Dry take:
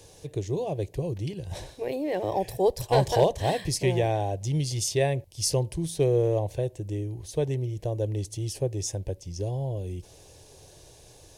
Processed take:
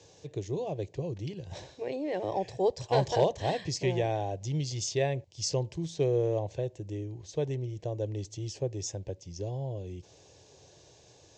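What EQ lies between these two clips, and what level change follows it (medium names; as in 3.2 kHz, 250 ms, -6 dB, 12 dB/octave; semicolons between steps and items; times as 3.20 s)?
high-pass 95 Hz; steep low-pass 7.5 kHz 72 dB/octave; -4.0 dB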